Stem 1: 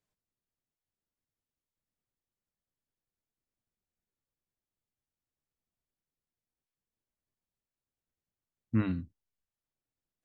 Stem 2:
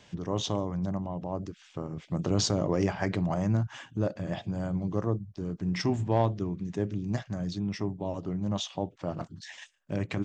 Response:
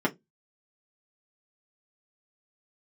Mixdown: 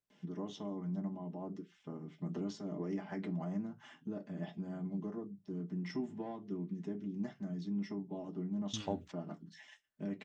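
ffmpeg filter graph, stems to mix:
-filter_complex "[0:a]acompressor=threshold=-40dB:ratio=2.5,volume=-6.5dB,asplit=2[a][b];[1:a]highshelf=f=2.6k:g=9.5,acompressor=threshold=-27dB:ratio=6,adelay=100,volume=-6dB,asplit=2[c][d];[d]volume=-18.5dB[e];[b]apad=whole_len=456164[f];[c][f]sidechaingate=range=-27dB:threshold=-59dB:ratio=16:detection=peak[g];[2:a]atrim=start_sample=2205[h];[e][h]afir=irnorm=-1:irlink=0[i];[a][g][i]amix=inputs=3:normalize=0"

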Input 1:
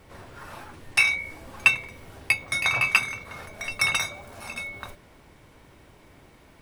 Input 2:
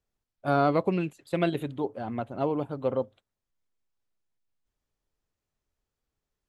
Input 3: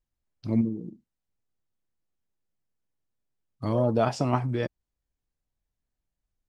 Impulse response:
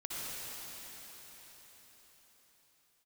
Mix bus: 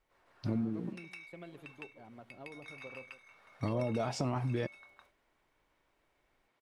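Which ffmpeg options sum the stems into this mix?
-filter_complex "[0:a]highpass=f=800:p=1,aemphasis=mode=reproduction:type=50kf,acompressor=threshold=-33dB:ratio=3,volume=-9.5dB,asplit=2[a][b];[b]volume=-9dB[c];[1:a]acompressor=threshold=-25dB:ratio=6,volume=-20dB,asplit=2[d][e];[e]volume=-14dB[f];[2:a]alimiter=limit=-17.5dB:level=0:latency=1:release=12,volume=1dB,asplit=2[g][h];[h]apad=whole_len=291513[i];[a][i]sidechaingate=range=-12dB:threshold=-38dB:ratio=16:detection=peak[j];[c][f]amix=inputs=2:normalize=0,aecho=0:1:160:1[k];[j][d][g][k]amix=inputs=4:normalize=0,acompressor=threshold=-31dB:ratio=4"

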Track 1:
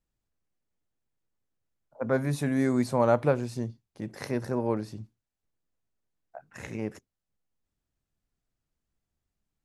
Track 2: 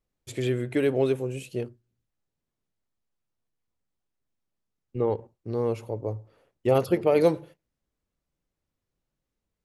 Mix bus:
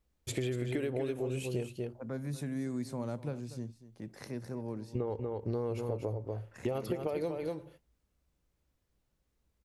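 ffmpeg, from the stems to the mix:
-filter_complex "[0:a]acrossover=split=340|3000[a][b][c];[b]acompressor=threshold=-44dB:ratio=2[d];[a][d][c]amix=inputs=3:normalize=0,volume=-7.5dB,asplit=2[e][f];[f]volume=-15.5dB[g];[1:a]equalizer=f=61:w=2.8:g=13,acompressor=threshold=-25dB:ratio=6,volume=2.5dB,asplit=2[h][i];[i]volume=-7.5dB[j];[g][j]amix=inputs=2:normalize=0,aecho=0:1:240:1[k];[e][h][k]amix=inputs=3:normalize=0,acompressor=threshold=-31dB:ratio=6"

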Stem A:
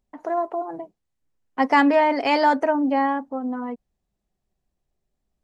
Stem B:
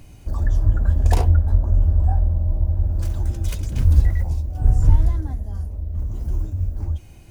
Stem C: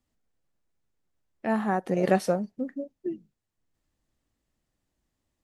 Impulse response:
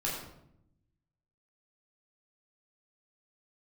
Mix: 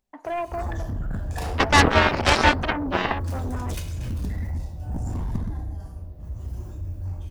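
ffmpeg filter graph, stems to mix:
-filter_complex "[0:a]volume=1dB,asplit=3[a][b][c];[b]volume=-23.5dB[d];[1:a]highpass=49,adelay=250,volume=-2.5dB,asplit=2[e][f];[f]volume=-4.5dB[g];[2:a]bandpass=f=650:t=q:w=2.7:csg=0,adelay=150,volume=1.5dB[h];[c]apad=whole_len=333341[i];[e][i]sidechaingate=range=-11dB:threshold=-41dB:ratio=16:detection=peak[j];[3:a]atrim=start_sample=2205[k];[d][g]amix=inputs=2:normalize=0[l];[l][k]afir=irnorm=-1:irlink=0[m];[a][j][h][m]amix=inputs=4:normalize=0,lowshelf=f=460:g=-7,aeval=exprs='0.668*(cos(1*acos(clip(val(0)/0.668,-1,1)))-cos(1*PI/2))+0.188*(cos(7*acos(clip(val(0)/0.668,-1,1)))-cos(7*PI/2))':c=same"

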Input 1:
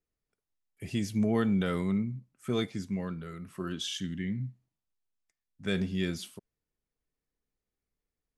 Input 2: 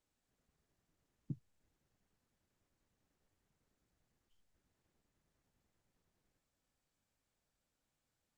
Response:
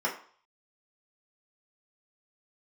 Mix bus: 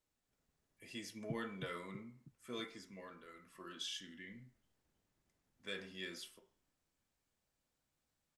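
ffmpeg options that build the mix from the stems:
-filter_complex "[0:a]highpass=f=1.1k:p=1,volume=-7dB,asplit=2[a][b];[b]volume=-10.5dB[c];[1:a]volume=-2dB,asplit=2[d][e];[e]volume=-4dB[f];[2:a]atrim=start_sample=2205[g];[c][g]afir=irnorm=-1:irlink=0[h];[f]aecho=0:1:321|642|963|1284|1605|1926|2247:1|0.51|0.26|0.133|0.0677|0.0345|0.0176[i];[a][d][h][i]amix=inputs=4:normalize=0"

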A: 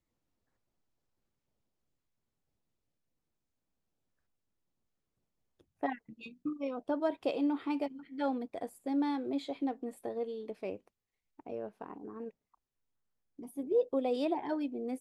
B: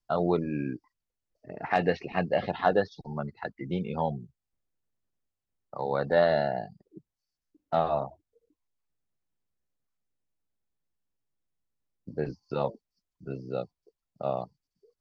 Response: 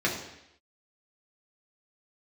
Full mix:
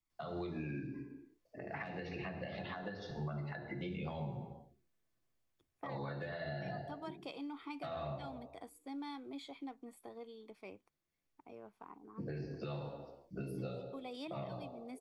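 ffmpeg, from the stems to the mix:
-filter_complex "[0:a]equalizer=f=150:w=0.31:g=-7.5,aecho=1:1:0.9:0.48,volume=-5.5dB,asplit=2[a][b];[1:a]equalizer=f=190:t=o:w=0.61:g=-6,acompressor=threshold=-27dB:ratio=6,adelay=100,volume=-2dB,asplit=2[c][d];[d]volume=-7.5dB[e];[b]apad=whole_len=666225[f];[c][f]sidechaincompress=threshold=-59dB:ratio=8:attack=42:release=1340[g];[2:a]atrim=start_sample=2205[h];[e][h]afir=irnorm=-1:irlink=0[i];[a][g][i]amix=inputs=3:normalize=0,acrossover=split=180|1700[j][k][l];[j]acompressor=threshold=-39dB:ratio=4[m];[k]acompressor=threshold=-43dB:ratio=4[n];[l]acompressor=threshold=-46dB:ratio=4[o];[m][n][o]amix=inputs=3:normalize=0,alimiter=level_in=8.5dB:limit=-24dB:level=0:latency=1:release=200,volume=-8.5dB"

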